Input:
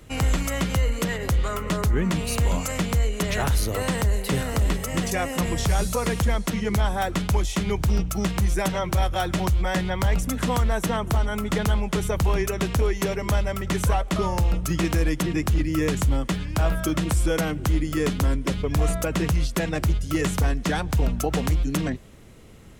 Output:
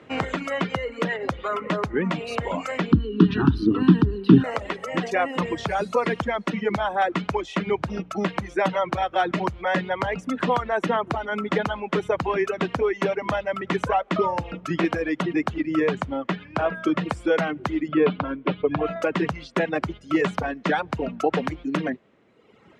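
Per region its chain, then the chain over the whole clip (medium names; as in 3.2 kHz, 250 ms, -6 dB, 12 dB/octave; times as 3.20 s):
2.92–4.44 s: low-pass 8.4 kHz + resonant low shelf 450 Hz +12.5 dB, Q 3 + static phaser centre 2.1 kHz, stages 6
15.80–17.05 s: high-pass 55 Hz + treble shelf 6.8 kHz -8.5 dB
17.88–18.96 s: low-pass 3.7 kHz 24 dB/octave + peaking EQ 1.9 kHz -7.5 dB 0.2 oct + comb 6.6 ms, depth 34%
whole clip: low-pass 2.4 kHz 12 dB/octave; reverb removal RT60 1.5 s; high-pass 250 Hz 12 dB/octave; trim +5.5 dB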